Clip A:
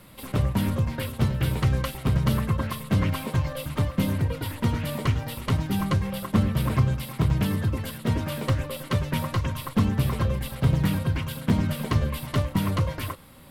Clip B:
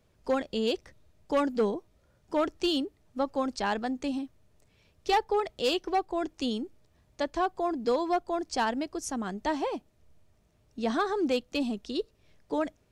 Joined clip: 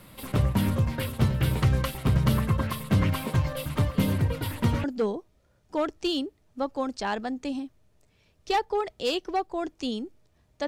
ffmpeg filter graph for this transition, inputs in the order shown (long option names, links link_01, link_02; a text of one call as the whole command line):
ffmpeg -i cue0.wav -i cue1.wav -filter_complex "[1:a]asplit=2[link_01][link_02];[0:a]apad=whole_dur=10.67,atrim=end=10.67,atrim=end=4.842[link_03];[link_02]atrim=start=1.428:end=7.26[link_04];[link_01]atrim=start=0.48:end=1.43,asetpts=PTS-STARTPTS,volume=-14.5dB,afade=type=in:duration=0.004:curve=hsin,afade=type=out:start_time=0.946:duration=0.004:curve=hsin,adelay=171549S[link_05];[link_03][link_04]acrossfade=duration=0.004:curve1=hsin:curve2=hsin[link_06];[link_06][link_05]amix=inputs=2:normalize=0" out.wav